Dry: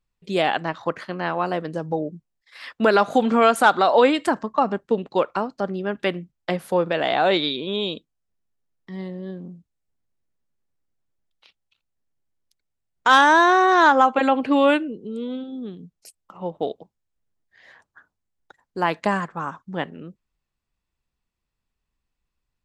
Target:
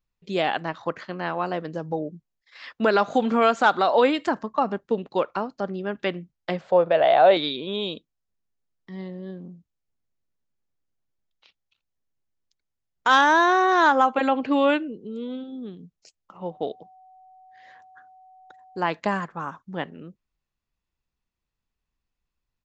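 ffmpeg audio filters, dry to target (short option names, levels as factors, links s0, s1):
-filter_complex "[0:a]aresample=16000,aresample=44100,asettb=1/sr,asplit=3[s0][s1][s2];[s0]atrim=end=6.614[s3];[s1]atrim=start=6.61:end=7.37,asetpts=PTS-STARTPTS,afade=t=in:d=0.004:c=qsin,afade=t=out:st=0.756:d=0.004:c=qsin,equalizer=f=250:t=o:w=0.67:g=-9,equalizer=f=630:t=o:w=0.67:g=11,equalizer=f=6300:t=o:w=0.67:g=-11[s4];[s2]atrim=start=7.366[s5];[s3][s4]acrossfade=d=0.004:c1=hsin:c2=qsin[s6];[s6][s5]acrossfade=d=0.004:c1=qsin:c2=hsin,asettb=1/sr,asplit=3[s7][s8][s9];[s7]atrim=end=16.444[s10];[s8]atrim=start=16.44:end=18.79,asetpts=PTS-STARTPTS,afade=t=in:d=0.004:c=qsin,afade=t=out:st=2.346:d=0.004:c=qsin,aeval=exprs='val(0)+0.00501*sin(2*PI*750*n/s)':c=same[s11];[s9]atrim=start=18.786[s12];[s10][s11]acrossfade=d=0.004:c1=hsin:c2=qsin[s13];[s13][s12]acrossfade=d=0.004:c1=qsin:c2=hsin,volume=0.708"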